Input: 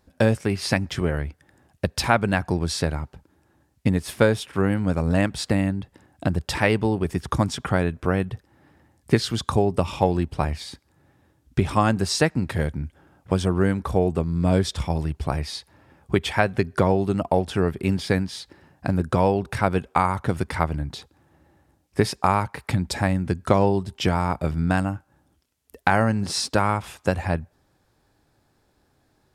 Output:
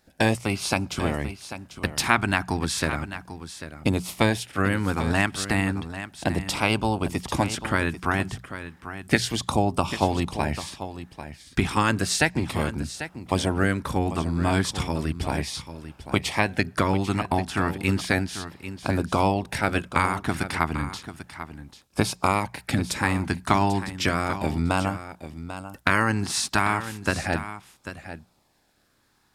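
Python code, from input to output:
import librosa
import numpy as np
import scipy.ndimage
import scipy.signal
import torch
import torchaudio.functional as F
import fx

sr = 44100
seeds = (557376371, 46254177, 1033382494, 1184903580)

p1 = fx.spec_clip(x, sr, under_db=13)
p2 = fx.peak_eq(p1, sr, hz=450.0, db=-5.5, octaves=0.75)
p3 = fx.hum_notches(p2, sr, base_hz=60, count=3)
p4 = fx.filter_lfo_notch(p3, sr, shape='sine', hz=0.33, low_hz=510.0, high_hz=1900.0, q=2.5)
y = p4 + fx.echo_single(p4, sr, ms=793, db=-12.0, dry=0)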